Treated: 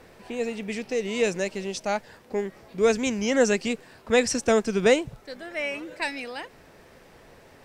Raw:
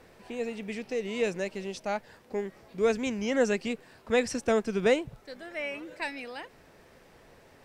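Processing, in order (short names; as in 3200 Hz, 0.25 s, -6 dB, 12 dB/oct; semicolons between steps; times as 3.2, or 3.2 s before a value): dynamic EQ 6700 Hz, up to +6 dB, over -52 dBFS, Q 0.9; gain +4.5 dB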